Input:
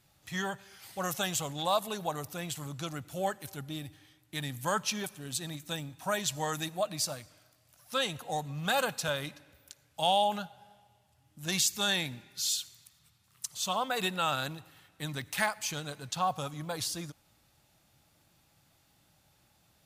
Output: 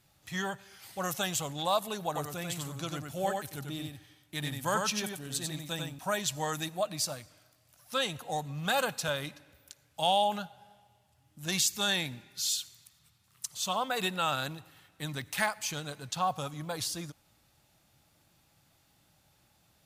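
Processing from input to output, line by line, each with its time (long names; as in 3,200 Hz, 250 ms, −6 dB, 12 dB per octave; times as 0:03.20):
0:02.06–0:05.99: single-tap delay 94 ms −4 dB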